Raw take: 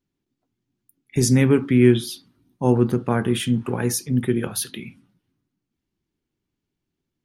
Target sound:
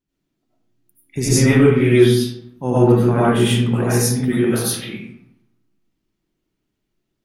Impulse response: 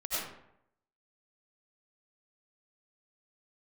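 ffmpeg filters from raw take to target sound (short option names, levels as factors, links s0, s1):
-filter_complex "[1:a]atrim=start_sample=2205[s0];[0:a][s0]afir=irnorm=-1:irlink=0,volume=1.12"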